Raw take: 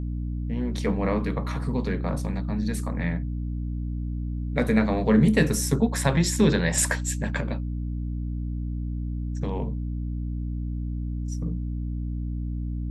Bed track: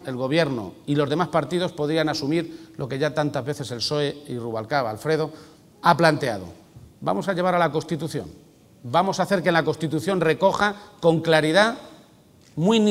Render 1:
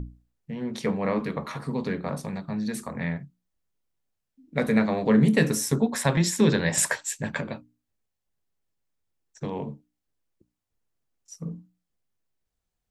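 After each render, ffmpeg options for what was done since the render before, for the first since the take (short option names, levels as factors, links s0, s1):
-af "bandreject=f=60:t=h:w=6,bandreject=f=120:t=h:w=6,bandreject=f=180:t=h:w=6,bandreject=f=240:t=h:w=6,bandreject=f=300:t=h:w=6"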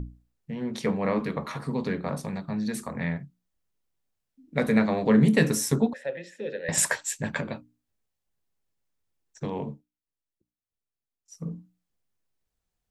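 -filter_complex "[0:a]asettb=1/sr,asplit=3[s0][s1][s2];[s0]atrim=end=5.934[s3];[s1]atrim=start=5.93:end=6.69,asetpts=PTS-STARTPTS,afade=t=in:d=0.004:c=qsin,afade=t=out:st=0.756:d=0.004:c=qsin,asplit=3[s4][s5][s6];[s4]bandpass=f=530:t=q:w=8,volume=1[s7];[s5]bandpass=f=1840:t=q:w=8,volume=0.501[s8];[s6]bandpass=f=2480:t=q:w=8,volume=0.355[s9];[s7][s8][s9]amix=inputs=3:normalize=0[s10];[s2]atrim=start=6.686[s11];[s3][s10]acrossfade=d=0.004:c1=hsin:c2=qsin[s12];[s12][s11]acrossfade=d=0.004:c1=qsin:c2=hsin,asplit=3[s13][s14][s15];[s13]atrim=end=9.88,asetpts=PTS-STARTPTS,afade=t=out:st=9.7:d=0.18:silence=0.223872[s16];[s14]atrim=start=9.88:end=11.24,asetpts=PTS-STARTPTS,volume=0.224[s17];[s15]atrim=start=11.24,asetpts=PTS-STARTPTS,afade=t=in:d=0.18:silence=0.223872[s18];[s16][s17][s18]concat=n=3:v=0:a=1"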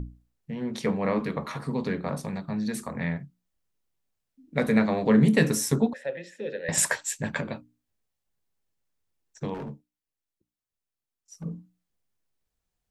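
-filter_complex "[0:a]asettb=1/sr,asplit=3[s0][s1][s2];[s0]atrim=end=9.544[s3];[s1]atrim=start=9.54:end=11.44,asetpts=PTS-STARTPTS,afade=t=in:d=0.004:c=qsin,afade=t=out:st=1.896:d=0.004:c=qsin,volume=44.7,asoftclip=hard,volume=0.0224[s4];[s2]atrim=start=11.436[s5];[s3][s4]acrossfade=d=0.004:c1=hsin:c2=qsin[s6];[s6][s5]acrossfade=d=0.004:c1=qsin:c2=hsin"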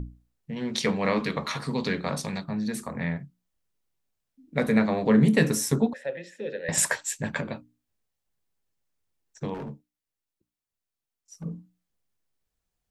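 -filter_complex "[0:a]asettb=1/sr,asplit=3[s0][s1][s2];[s0]atrim=end=0.564[s3];[s1]atrim=start=0.56:end=2.44,asetpts=PTS-STARTPTS,afade=t=in:d=0.004:c=qsin,afade=t=out:st=1.876:d=0.004:c=qsin,equalizer=f=4500:t=o:w=2.4:g=11.5[s4];[s2]atrim=start=2.436[s5];[s3][s4]acrossfade=d=0.004:c1=hsin:c2=qsin[s6];[s6][s5]acrossfade=d=0.004:c1=qsin:c2=hsin"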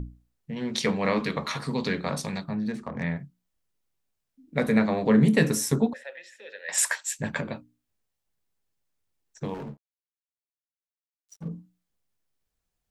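-filter_complex "[0:a]asettb=1/sr,asplit=3[s0][s1][s2];[s0]atrim=end=2.544[s3];[s1]atrim=start=2.54:end=3.03,asetpts=PTS-STARTPTS,afade=t=in:d=0.004:c=qsin,afade=t=out:st=0.486:d=0.004:c=qsin,adynamicsmooth=sensitivity=4.5:basefreq=2100[s4];[s2]atrim=start=3.026[s5];[s3][s4]acrossfade=d=0.004:c1=hsin:c2=qsin[s6];[s6][s5]acrossfade=d=0.004:c1=qsin:c2=hsin,asettb=1/sr,asplit=3[s7][s8][s9];[s7]atrim=end=6.034[s10];[s8]atrim=start=6.03:end=7.19,asetpts=PTS-STARTPTS,afade=t=in:d=0.004:c=qsin,afade=t=out:st=1.156:d=0.004:c=qsin,highpass=1000[s11];[s9]atrim=start=7.186[s12];[s10][s11]acrossfade=d=0.004:c1=hsin:c2=qsin[s13];[s13][s12]acrossfade=d=0.004:c1=qsin:c2=hsin,asettb=1/sr,asplit=3[s14][s15][s16];[s14]atrim=end=9.444[s17];[s15]atrim=start=9.44:end=11.48,asetpts=PTS-STARTPTS,afade=t=in:d=0.004:c=qsin,afade=t=out:st=2.036:d=0.004:c=qsin,aeval=exprs='sgn(val(0))*max(abs(val(0))-0.00211,0)':c=same[s18];[s16]atrim=start=11.476[s19];[s17][s18]acrossfade=d=0.004:c1=hsin:c2=qsin[s20];[s20][s19]acrossfade=d=0.004:c1=qsin:c2=hsin"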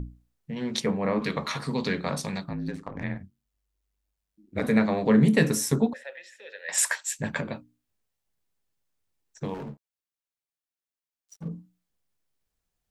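-filter_complex "[0:a]asettb=1/sr,asplit=3[s0][s1][s2];[s0]atrim=end=0.804[s3];[s1]atrim=start=0.8:end=1.22,asetpts=PTS-STARTPTS,afade=t=in:d=0.004:c=qsin,afade=t=out:st=0.416:d=0.004:c=qsin,equalizer=f=4400:w=0.56:g=-15[s4];[s2]atrim=start=1.216[s5];[s3][s4]acrossfade=d=0.004:c1=hsin:c2=qsin[s6];[s6][s5]acrossfade=d=0.004:c1=qsin:c2=hsin,asettb=1/sr,asplit=3[s7][s8][s9];[s7]atrim=end=2.494[s10];[s8]atrim=start=2.49:end=4.64,asetpts=PTS-STARTPTS,afade=t=in:d=0.004:c=qsin,afade=t=out:st=2.146:d=0.004:c=qsin,aeval=exprs='val(0)*sin(2*PI*50*n/s)':c=same[s11];[s9]atrim=start=4.636[s12];[s10][s11]acrossfade=d=0.004:c1=hsin:c2=qsin[s13];[s13][s12]acrossfade=d=0.004:c1=qsin:c2=hsin,asettb=1/sr,asplit=3[s14][s15][s16];[s14]atrim=end=6.134[s17];[s15]atrim=start=6.13:end=6.65,asetpts=PTS-STARTPTS,afade=t=in:d=0.004:c=qsin,afade=t=out:st=0.516:d=0.004:c=qsin,equalizer=f=230:w=1.5:g=-7[s18];[s16]atrim=start=6.646[s19];[s17][s18]acrossfade=d=0.004:c1=hsin:c2=qsin[s20];[s20][s19]acrossfade=d=0.004:c1=qsin:c2=hsin"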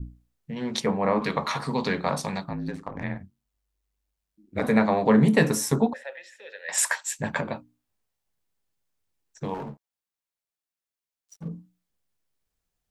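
-af "adynamicequalizer=threshold=0.00708:dfrequency=870:dqfactor=1.2:tfrequency=870:tqfactor=1.2:attack=5:release=100:ratio=0.375:range=4:mode=boostabove:tftype=bell"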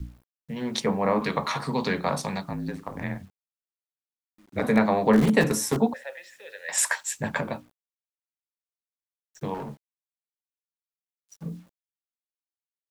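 -filter_complex "[0:a]acrossover=split=140[s0][s1];[s0]aeval=exprs='(mod(26.6*val(0)+1,2)-1)/26.6':c=same[s2];[s2][s1]amix=inputs=2:normalize=0,acrusher=bits=9:mix=0:aa=0.000001"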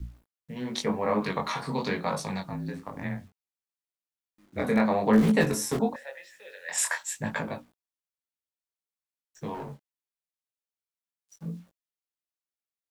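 -af "flanger=delay=18:depth=6.2:speed=0.95"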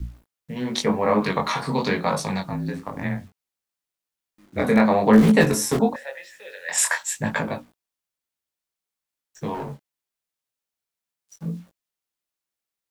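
-af "volume=2.11"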